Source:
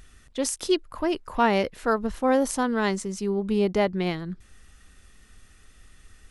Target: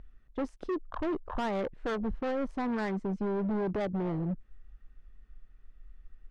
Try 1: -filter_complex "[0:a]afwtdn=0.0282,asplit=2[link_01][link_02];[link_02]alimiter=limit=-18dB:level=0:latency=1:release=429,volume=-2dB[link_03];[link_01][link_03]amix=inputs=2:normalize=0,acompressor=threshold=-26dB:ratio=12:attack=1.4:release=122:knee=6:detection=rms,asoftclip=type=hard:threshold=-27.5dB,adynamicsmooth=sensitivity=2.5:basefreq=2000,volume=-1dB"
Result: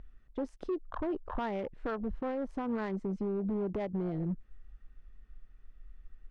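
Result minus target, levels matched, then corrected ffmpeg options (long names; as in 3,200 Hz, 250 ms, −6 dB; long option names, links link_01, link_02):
downward compressor: peak gain reduction +7 dB
-filter_complex "[0:a]afwtdn=0.0282,asplit=2[link_01][link_02];[link_02]alimiter=limit=-18dB:level=0:latency=1:release=429,volume=-2dB[link_03];[link_01][link_03]amix=inputs=2:normalize=0,acompressor=threshold=-18.5dB:ratio=12:attack=1.4:release=122:knee=6:detection=rms,asoftclip=type=hard:threshold=-27.5dB,adynamicsmooth=sensitivity=2.5:basefreq=2000,volume=-1dB"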